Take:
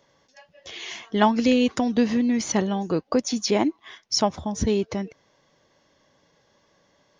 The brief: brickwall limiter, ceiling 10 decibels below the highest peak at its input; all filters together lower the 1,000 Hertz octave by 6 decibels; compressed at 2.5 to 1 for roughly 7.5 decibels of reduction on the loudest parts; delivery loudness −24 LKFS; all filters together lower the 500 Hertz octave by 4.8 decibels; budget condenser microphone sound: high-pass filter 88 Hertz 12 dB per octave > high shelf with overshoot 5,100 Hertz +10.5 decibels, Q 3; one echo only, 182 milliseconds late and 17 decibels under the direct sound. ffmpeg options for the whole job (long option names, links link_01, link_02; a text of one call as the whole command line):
ffmpeg -i in.wav -af "equalizer=frequency=500:width_type=o:gain=-4.5,equalizer=frequency=1000:width_type=o:gain=-5.5,acompressor=threshold=-28dB:ratio=2.5,alimiter=level_in=2dB:limit=-24dB:level=0:latency=1,volume=-2dB,highpass=88,highshelf=frequency=5100:width_type=q:width=3:gain=10.5,aecho=1:1:182:0.141,volume=5dB" out.wav